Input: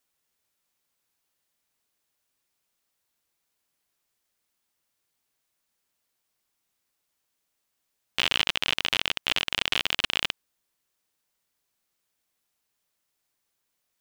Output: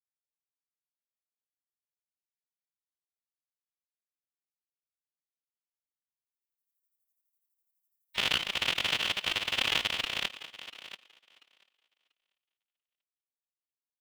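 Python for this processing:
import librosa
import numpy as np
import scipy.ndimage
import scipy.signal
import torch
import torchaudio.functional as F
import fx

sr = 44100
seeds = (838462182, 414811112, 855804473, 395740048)

y = fx.bin_expand(x, sr, power=2.0)
y = fx.level_steps(y, sr, step_db=18)
y = fx.echo_thinned(y, sr, ms=689, feedback_pct=16, hz=190.0, wet_db=-15.0)
y = fx.chopper(y, sr, hz=12.0, depth_pct=60, duty_pct=50)
y = fx.pitch_keep_formants(y, sr, semitones=2.0)
y = fx.pre_swell(y, sr, db_per_s=32.0)
y = y * 10.0 ** (8.0 / 20.0)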